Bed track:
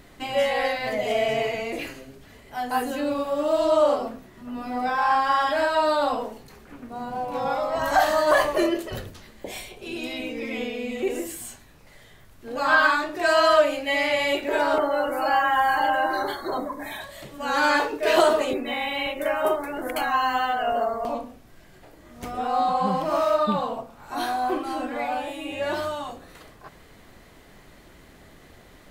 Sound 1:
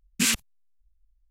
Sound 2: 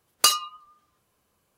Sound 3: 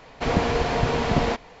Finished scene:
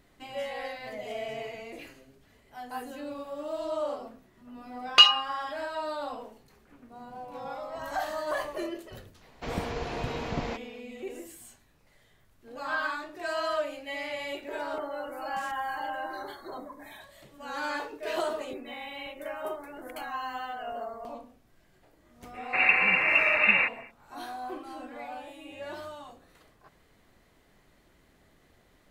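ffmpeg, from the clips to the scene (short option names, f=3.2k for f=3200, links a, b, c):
-filter_complex "[3:a]asplit=2[a][b];[0:a]volume=-12.5dB[c];[2:a]lowpass=f=2.9k:t=q:w=4.5[d];[1:a]acompressor=threshold=-41dB:ratio=6:attack=3.2:release=140:knee=1:detection=peak[e];[b]lowpass=f=2.4k:t=q:w=0.5098,lowpass=f=2.4k:t=q:w=0.6013,lowpass=f=2.4k:t=q:w=0.9,lowpass=f=2.4k:t=q:w=2.563,afreqshift=-2800[f];[d]atrim=end=1.57,asetpts=PTS-STARTPTS,volume=-2dB,afade=t=in:d=0.004:c=hsin,afade=t=out:st=1.566:d=0.004:c=hsin,adelay=4740[g];[a]atrim=end=1.6,asetpts=PTS-STARTPTS,volume=-11dB,afade=t=in:d=0.004:c=hsin,afade=t=out:st=1.596:d=0.004:c=hsin,adelay=9210[h];[e]atrim=end=1.3,asetpts=PTS-STARTPTS,volume=-7.5dB,afade=t=in:d=0.004:c=hsin,afade=t=out:st=1.296:d=0.004:c=hsin,adelay=15170[i];[f]atrim=end=1.6,asetpts=PTS-STARTPTS,volume=-1dB,afade=t=in:d=0.05,afade=t=out:st=1.55:d=0.05,adelay=22320[j];[c][g][h][i][j]amix=inputs=5:normalize=0"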